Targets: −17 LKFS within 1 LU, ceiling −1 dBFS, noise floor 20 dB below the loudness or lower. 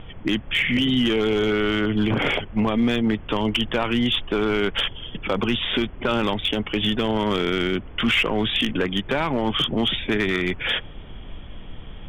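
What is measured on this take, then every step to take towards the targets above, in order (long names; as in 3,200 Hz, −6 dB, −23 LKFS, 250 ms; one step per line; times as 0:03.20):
share of clipped samples 0.8%; peaks flattened at −14.0 dBFS; background noise floor −38 dBFS; target noise floor −43 dBFS; integrated loudness −22.5 LKFS; sample peak −14.0 dBFS; target loudness −17.0 LKFS
→ clipped peaks rebuilt −14 dBFS
noise reduction from a noise print 6 dB
level +5.5 dB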